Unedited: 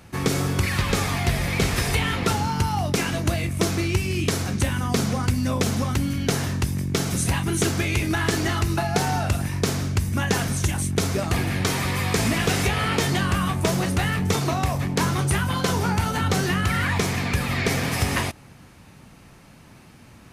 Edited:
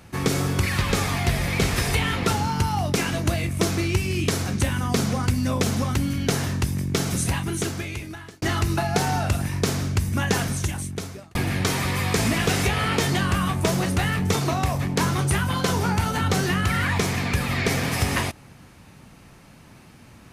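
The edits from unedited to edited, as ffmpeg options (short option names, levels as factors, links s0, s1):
-filter_complex "[0:a]asplit=3[s0][s1][s2];[s0]atrim=end=8.42,asetpts=PTS-STARTPTS,afade=t=out:st=7.11:d=1.31[s3];[s1]atrim=start=8.42:end=11.35,asetpts=PTS-STARTPTS,afade=t=in:d=0.004:c=hsin,afade=t=out:st=1.97:d=0.96[s4];[s2]atrim=start=11.35,asetpts=PTS-STARTPTS,afade=t=in:d=0.004:c=hsin[s5];[s3][s4][s5]concat=n=3:v=0:a=1"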